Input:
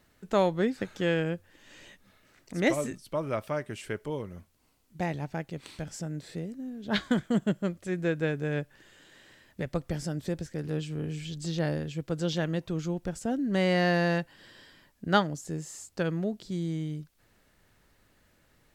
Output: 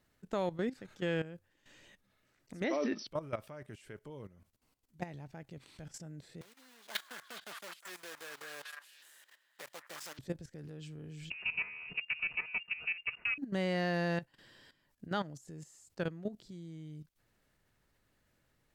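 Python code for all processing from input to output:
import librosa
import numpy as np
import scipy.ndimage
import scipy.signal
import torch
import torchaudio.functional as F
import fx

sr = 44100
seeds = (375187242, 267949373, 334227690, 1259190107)

y = fx.chain(x, sr, fx.brickwall_bandpass(low_hz=190.0, high_hz=6000.0),
    fx.env_flatten(amount_pct=70), at=(2.64, 3.07))
y = fx.chain(y, sr, fx.block_float(bits=3),
    fx.highpass(hz=750.0, slope=12),
    fx.echo_stepped(ms=205, hz=1400.0, octaves=1.4, feedback_pct=70, wet_db=-2.0), at=(6.41, 10.19))
y = fx.chain(y, sr, fx.lower_of_two(delay_ms=3.8),
    fx.freq_invert(carrier_hz=2800),
    fx.band_squash(depth_pct=100), at=(11.3, 13.38))
y = fx.peak_eq(y, sr, hz=130.0, db=5.0, octaves=0.22)
y = fx.level_steps(y, sr, step_db=14)
y = F.gain(torch.from_numpy(y), -4.5).numpy()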